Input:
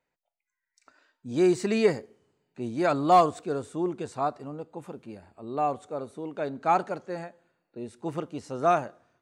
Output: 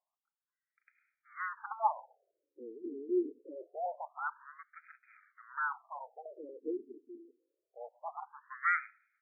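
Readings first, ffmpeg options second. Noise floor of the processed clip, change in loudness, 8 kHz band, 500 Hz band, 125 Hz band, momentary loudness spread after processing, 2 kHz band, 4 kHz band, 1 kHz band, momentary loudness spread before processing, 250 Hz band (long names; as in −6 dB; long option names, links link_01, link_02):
below −85 dBFS, −10.5 dB, below −35 dB, −15.0 dB, below −40 dB, 19 LU, +0.5 dB, below −40 dB, −11.0 dB, 19 LU, −13.0 dB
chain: -af "lowpass=8300,aeval=exprs='abs(val(0))':channel_layout=same,afftfilt=real='re*between(b*sr/1024,310*pow(1800/310,0.5+0.5*sin(2*PI*0.25*pts/sr))/1.41,310*pow(1800/310,0.5+0.5*sin(2*PI*0.25*pts/sr))*1.41)':imag='im*between(b*sr/1024,310*pow(1800/310,0.5+0.5*sin(2*PI*0.25*pts/sr))/1.41,310*pow(1800/310,0.5+0.5*sin(2*PI*0.25*pts/sr))*1.41)':win_size=1024:overlap=0.75"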